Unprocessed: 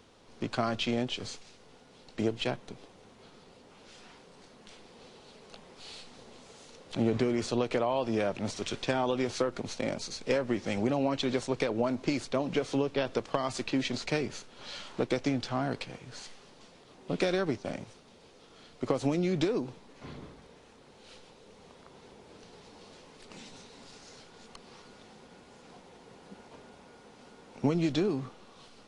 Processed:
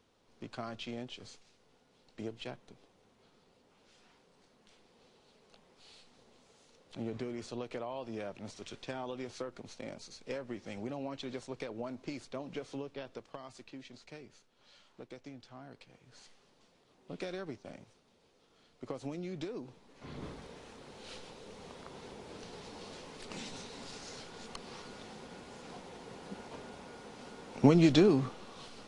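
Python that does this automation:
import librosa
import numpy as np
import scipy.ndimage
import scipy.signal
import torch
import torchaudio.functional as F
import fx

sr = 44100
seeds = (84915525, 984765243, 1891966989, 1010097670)

y = fx.gain(x, sr, db=fx.line((12.66, -11.5), (13.85, -19.5), (15.7, -19.5), (16.22, -12.0), (19.52, -12.0), (20.09, -3.0), (20.27, 4.5)))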